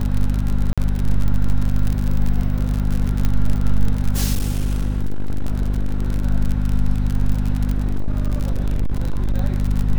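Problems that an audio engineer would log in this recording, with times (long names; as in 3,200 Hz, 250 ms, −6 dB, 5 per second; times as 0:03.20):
surface crackle 54 per second −20 dBFS
mains hum 50 Hz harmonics 5 −20 dBFS
0:00.73–0:00.78: drop-out 46 ms
0:03.25: click −8 dBFS
0:04.33–0:06.25: clipping −15 dBFS
0:07.71–0:09.35: clipping −15 dBFS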